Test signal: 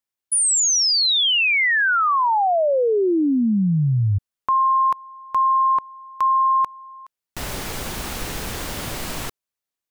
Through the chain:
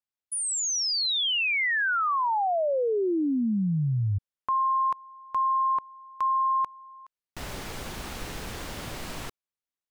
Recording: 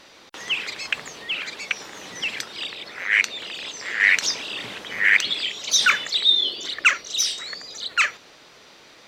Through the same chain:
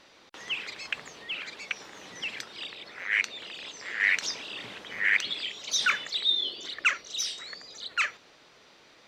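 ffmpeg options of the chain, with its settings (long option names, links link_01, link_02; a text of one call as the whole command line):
ffmpeg -i in.wav -af "highshelf=frequency=8200:gain=-7.5,volume=-7dB" out.wav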